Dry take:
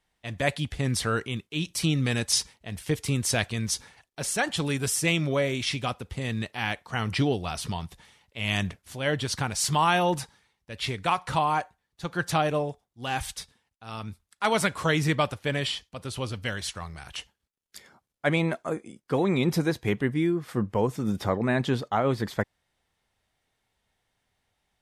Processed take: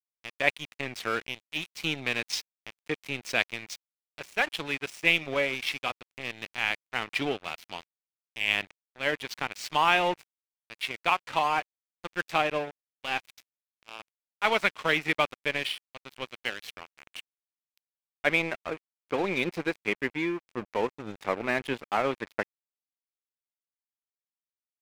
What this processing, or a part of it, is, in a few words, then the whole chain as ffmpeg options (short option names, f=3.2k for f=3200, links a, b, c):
pocket radio on a weak battery: -filter_complex "[0:a]asettb=1/sr,asplit=3[a][b][c];[a]atrim=end=8.564[d];[b]atrim=start=8.56:end=9.21,asetpts=PTS-STARTPTS,afade=t=in:d=0.004:c=qsin,afade=t=out:st=0.646:d=0.004:c=qsin,lowpass=3.4k[e];[c]atrim=start=9.206[f];[d][e]acrossfade=d=0.004:c1=hsin:c2=qsin[g];[g][f]acrossfade=d=0.004:c1=qsin:c2=hsin,highpass=310,lowpass=4.5k,aeval=exprs='sgn(val(0))*max(abs(val(0))-0.0158,0)':c=same,equalizer=f=2.4k:t=o:w=0.6:g=8"